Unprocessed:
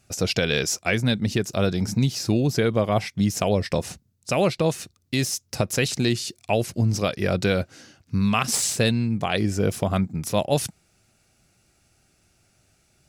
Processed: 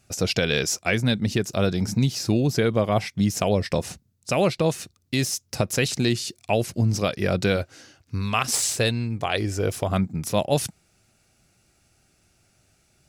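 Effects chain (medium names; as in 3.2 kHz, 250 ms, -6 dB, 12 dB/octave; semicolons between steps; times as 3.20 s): 7.56–9.89 s: peaking EQ 190 Hz -10.5 dB 0.63 oct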